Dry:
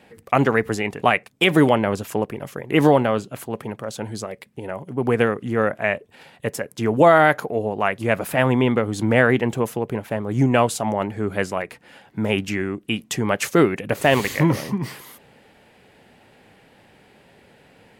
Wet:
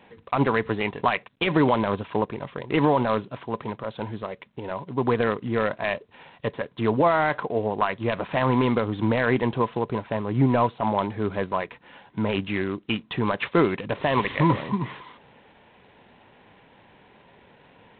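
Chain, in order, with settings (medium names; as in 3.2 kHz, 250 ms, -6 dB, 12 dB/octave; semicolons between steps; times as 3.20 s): peaking EQ 1 kHz +10.5 dB 0.24 oct; 9.98–11.63 s: de-esser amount 100%; peak limiter -8 dBFS, peak gain reduction 7.5 dB; trim -2 dB; G.726 24 kbps 8 kHz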